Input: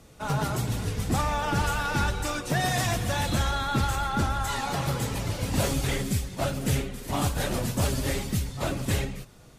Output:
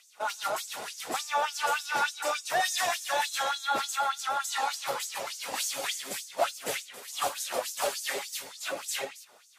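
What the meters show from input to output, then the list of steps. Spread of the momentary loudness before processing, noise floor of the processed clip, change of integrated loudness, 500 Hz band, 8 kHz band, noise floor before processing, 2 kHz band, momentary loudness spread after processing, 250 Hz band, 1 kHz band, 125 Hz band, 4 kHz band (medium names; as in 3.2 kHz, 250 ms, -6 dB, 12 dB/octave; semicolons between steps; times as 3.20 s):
4 LU, -57 dBFS, -3.0 dB, -2.5 dB, +1.0 dB, -50 dBFS, 0.0 dB, 8 LU, -20.0 dB, 0.0 dB, under -30 dB, +0.5 dB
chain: LFO high-pass sine 3.4 Hz 550–6700 Hz; trim -1.5 dB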